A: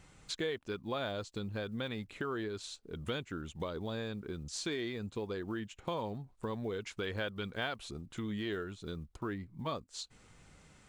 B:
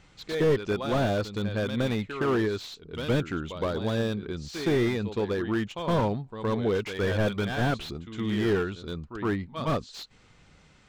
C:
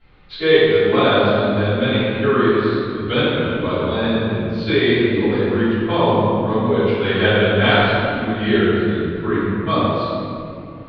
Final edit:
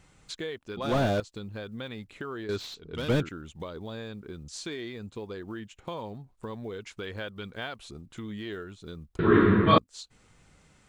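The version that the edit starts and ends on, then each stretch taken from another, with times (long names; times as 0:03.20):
A
0:00.77–0:01.20: punch in from B
0:02.49–0:03.29: punch in from B
0:09.19–0:09.78: punch in from C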